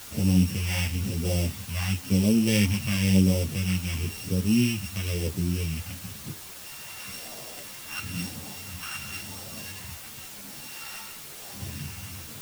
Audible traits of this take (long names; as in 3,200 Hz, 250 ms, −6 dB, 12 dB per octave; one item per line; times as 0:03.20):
a buzz of ramps at a fixed pitch in blocks of 16 samples
phaser sweep stages 2, 0.98 Hz, lowest notch 420–1,600 Hz
a quantiser's noise floor 8 bits, dither triangular
a shimmering, thickened sound